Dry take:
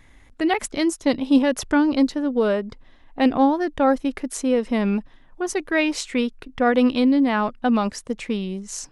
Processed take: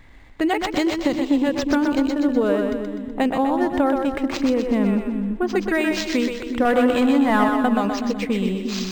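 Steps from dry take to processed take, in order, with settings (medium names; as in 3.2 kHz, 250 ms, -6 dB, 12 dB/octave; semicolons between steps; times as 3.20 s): 4.37–5.56 s: tone controls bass +4 dB, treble -10 dB; compression, threshold -21 dBFS, peak gain reduction 10 dB; 6.65–7.44 s: overdrive pedal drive 19 dB, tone 1.8 kHz, clips at -14 dBFS; two-band feedback delay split 330 Hz, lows 356 ms, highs 125 ms, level -4.5 dB; decimation joined by straight lines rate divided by 4×; trim +4 dB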